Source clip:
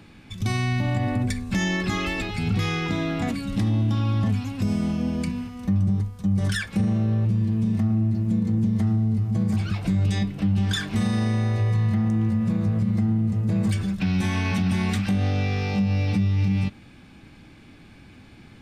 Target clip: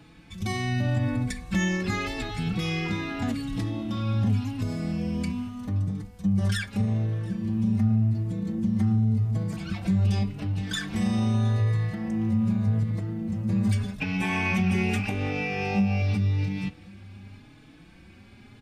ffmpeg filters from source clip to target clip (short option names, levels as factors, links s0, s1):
-filter_complex "[0:a]asettb=1/sr,asplit=3[s0][s1][s2];[s0]atrim=end=14.004[s3];[s1]atrim=start=14:end=16.02,asetpts=PTS-STARTPTS,afade=t=in:d=0.004:c=qsin,afade=t=out:st=2.016:d=0.004:c=qsin,equalizer=f=100:t=o:w=0.33:g=-3,equalizer=f=400:t=o:w=0.33:g=9,equalizer=f=800:t=o:w=0.33:g=7,equalizer=f=2500:t=o:w=0.33:g=11,equalizer=f=4000:t=o:w=0.33:g=-8[s4];[s2]atrim=start=16.016[s5];[s3][s4]acrossfade=d=0.004:c1=hsin:c2=qsin[s6];[s6][s5]acrossfade=d=0.004:c1=qsin:c2=hsin,aecho=1:1:714:0.0668,asplit=2[s7][s8];[s8]adelay=4.2,afreqshift=0.85[s9];[s7][s9]amix=inputs=2:normalize=1"